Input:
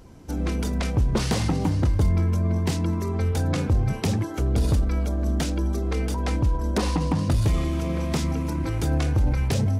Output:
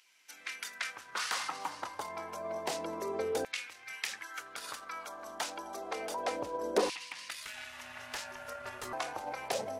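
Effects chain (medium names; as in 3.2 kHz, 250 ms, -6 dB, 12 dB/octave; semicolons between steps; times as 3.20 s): LFO high-pass saw down 0.29 Hz 430–2500 Hz; 7.42–8.93 s: ring modulator 410 Hz; trim -5.5 dB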